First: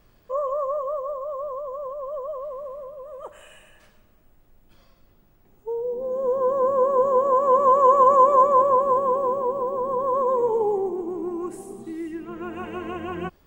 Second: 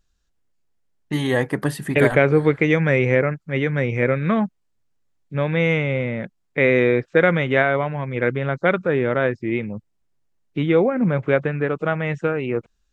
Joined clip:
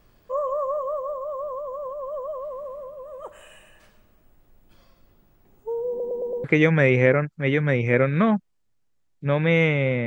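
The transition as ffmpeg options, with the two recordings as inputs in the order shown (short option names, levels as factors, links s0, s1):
-filter_complex "[0:a]apad=whole_dur=10.06,atrim=end=10.06,asplit=5[s0][s1][s2][s3][s4];[s0]atrim=end=6.002[s5];[s1]atrim=start=5.888:end=6.002[s6];[s2]atrim=start=5.888:end=6.002[s7];[s3]atrim=start=5.888:end=6.002[s8];[s4]atrim=start=5.888:end=6.002[s9];[1:a]atrim=start=2.528:end=6.15[s10];[s5][s6]acrossfade=d=0.004:c1=hsin:c2=hsin[s11];[s11][s7]acrossfade=d=0.004:c1=hsin:c2=hsin[s12];[s12][s8]acrossfade=d=0.004:c1=hsin:c2=hsin[s13];[s13][s9]acrossfade=d=0.004:c1=hsin:c2=hsin[s14];[s14][s10]acrossfade=d=0.004:c1=hsin:c2=hsin"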